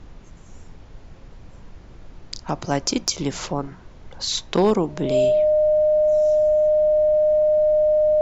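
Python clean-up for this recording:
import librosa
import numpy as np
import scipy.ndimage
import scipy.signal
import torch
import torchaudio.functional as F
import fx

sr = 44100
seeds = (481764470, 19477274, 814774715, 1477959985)

y = fx.fix_declip(x, sr, threshold_db=-8.5)
y = fx.notch(y, sr, hz=610.0, q=30.0)
y = fx.noise_reduce(y, sr, print_start_s=0.0, print_end_s=0.5, reduce_db=24.0)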